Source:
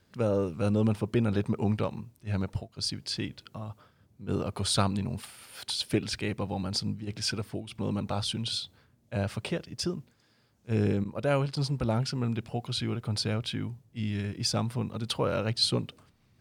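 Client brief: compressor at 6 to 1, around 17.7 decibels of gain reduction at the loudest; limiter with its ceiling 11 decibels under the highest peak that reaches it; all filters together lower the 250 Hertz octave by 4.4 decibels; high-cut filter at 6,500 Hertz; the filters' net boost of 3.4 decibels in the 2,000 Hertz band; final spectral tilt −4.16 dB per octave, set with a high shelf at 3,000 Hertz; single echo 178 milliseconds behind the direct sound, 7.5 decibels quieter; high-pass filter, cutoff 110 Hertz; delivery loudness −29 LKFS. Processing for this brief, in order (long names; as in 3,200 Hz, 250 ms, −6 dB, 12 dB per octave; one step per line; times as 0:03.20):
high-pass filter 110 Hz
low-pass filter 6,500 Hz
parametric band 250 Hz −5.5 dB
parametric band 2,000 Hz +8 dB
high-shelf EQ 3,000 Hz −8 dB
downward compressor 6 to 1, threshold −42 dBFS
brickwall limiter −37.5 dBFS
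single-tap delay 178 ms −7.5 dB
level +19 dB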